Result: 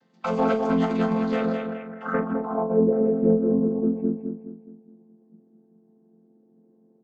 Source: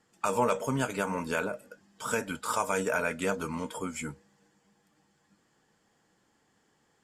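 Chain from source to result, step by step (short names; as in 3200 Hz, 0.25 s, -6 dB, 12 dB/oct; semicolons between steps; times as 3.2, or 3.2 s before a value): chord vocoder major triad, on F3; in parallel at -6 dB: one-sided clip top -34 dBFS; on the sum: doubler 41 ms -10.5 dB; feedback echo 0.209 s, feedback 38%, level -6 dB; low-pass sweep 4400 Hz -> 390 Hz, 1.52–2.84; gain +2.5 dB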